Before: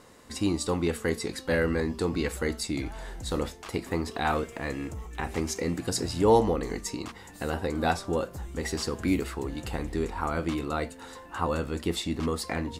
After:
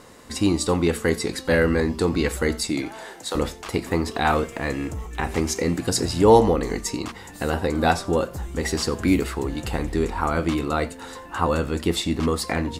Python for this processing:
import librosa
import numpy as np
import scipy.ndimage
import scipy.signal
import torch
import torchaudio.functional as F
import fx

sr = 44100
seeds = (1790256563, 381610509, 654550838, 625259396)

y = fx.highpass(x, sr, hz=fx.line((2.69, 140.0), (3.34, 490.0)), slope=12, at=(2.69, 3.34), fade=0.02)
y = y + 10.0 ** (-22.5 / 20.0) * np.pad(y, (int(89 * sr / 1000.0), 0))[:len(y)]
y = F.gain(torch.from_numpy(y), 6.5).numpy()